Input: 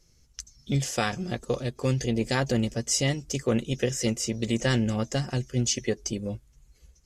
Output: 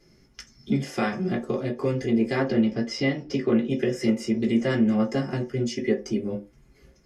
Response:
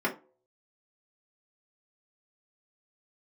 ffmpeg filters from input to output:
-filter_complex "[0:a]asettb=1/sr,asplit=3[s0][s1][s2];[s0]atrim=end=2.424[s3];[s1]atrim=start=2.42:end=3.7,asetpts=PTS-STARTPTS,afade=t=in:d=0.004:c=qsin,afade=t=out:st=1.276:d=0.004:c=qsin,highshelf=f=6400:t=q:w=1.5:g=-12.5[s4];[s2]atrim=start=3.696[s5];[s3][s4]acrossfade=d=0.004:c1=hsin:c2=qsin[s6];[s6][s5]acrossfade=d=0.004:c1=qsin:c2=hsin,acompressor=threshold=0.01:ratio=2[s7];[1:a]atrim=start_sample=2205,afade=t=out:st=0.24:d=0.01,atrim=end_sample=11025[s8];[s7][s8]afir=irnorm=-1:irlink=0"

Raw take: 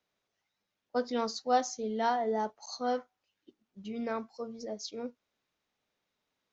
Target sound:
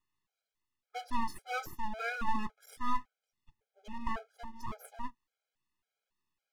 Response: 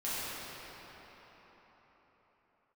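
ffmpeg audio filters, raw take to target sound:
-af "equalizer=f=125:t=o:w=1:g=-3,equalizer=f=250:t=o:w=1:g=-4,equalizer=f=500:t=o:w=1:g=9,equalizer=f=1000:t=o:w=1:g=-6,equalizer=f=2000:t=o:w=1:g=6,equalizer=f=4000:t=o:w=1:g=-5,aeval=exprs='abs(val(0))':c=same,afftfilt=real='re*gt(sin(2*PI*1.8*pts/sr)*(1-2*mod(floor(b*sr/1024/420),2)),0)':imag='im*gt(sin(2*PI*1.8*pts/sr)*(1-2*mod(floor(b*sr/1024/420),2)),0)':win_size=1024:overlap=0.75,volume=0.891"

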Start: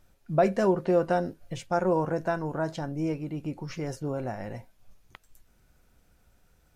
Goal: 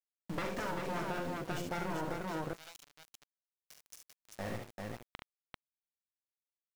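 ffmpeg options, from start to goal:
-filter_complex "[0:a]aeval=exprs='(tanh(15.8*val(0)+0.6)-tanh(0.6))/15.8':c=same,asettb=1/sr,asplit=3[s0][s1][s2];[s0]atrim=end=2.144[s3];[s1]atrim=start=2.14:end=4.39,asetpts=PTS-STARTPTS,afade=t=in:d=0.004:c=qsin,afade=t=out:st=2.246:d=0.004:c=qsin,aderivative[s4];[s2]atrim=start=4.386[s5];[s3][s4]acrossfade=d=0.004:c1=hsin:c2=qsin[s6];[s6][s5]acrossfade=d=0.004:c1=qsin:c2=hsin,bandreject=f=60:t=h:w=6,bandreject=f=120:t=h:w=6,bandreject=f=180:t=h:w=6,bandreject=f=240:t=h:w=6,bandreject=f=300:t=h:w=6,bandreject=f=360:t=h:w=6,bandreject=f=420:t=h:w=6,bandreject=f=480:t=h:w=6,afftfilt=real='re*lt(hypot(re,im),0.2)':imag='im*lt(hypot(re,im),0.2)':win_size=1024:overlap=0.75,aeval=exprs='val(0)*gte(abs(val(0)),0.00794)':c=same,aecho=1:1:42|70|392:0.447|0.501|0.708,acompressor=threshold=0.0178:ratio=6,volume=1.19"

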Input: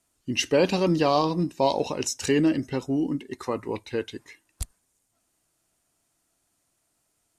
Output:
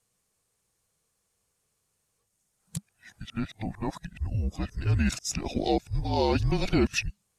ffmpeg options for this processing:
-af "areverse,afreqshift=-210,volume=0.708"

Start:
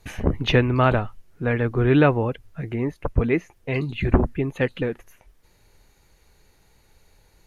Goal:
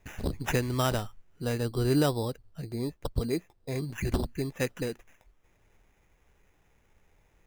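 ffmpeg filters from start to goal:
-filter_complex "[0:a]asettb=1/sr,asplit=3[s0][s1][s2];[s0]atrim=end=1.454[s3];[s1]atrim=start=1.45:end=3.84,asetpts=PTS-STARTPTS,afade=t=in:d=0.004:c=qsin,afade=t=out:st=2.386:d=0.004:c=qsin,lowpass=1500[s4];[s2]atrim=start=3.836[s5];[s3][s4]acrossfade=d=0.004:c1=hsin:c2=qsin[s6];[s6][s5]acrossfade=d=0.004:c1=qsin:c2=hsin,alimiter=limit=0.376:level=0:latency=1:release=262,acrusher=samples=10:mix=1:aa=0.000001,volume=0.422"

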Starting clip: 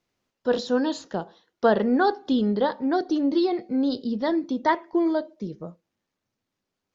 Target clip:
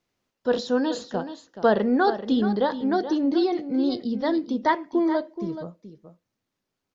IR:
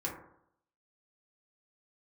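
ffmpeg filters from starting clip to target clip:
-af "aecho=1:1:427:0.266"

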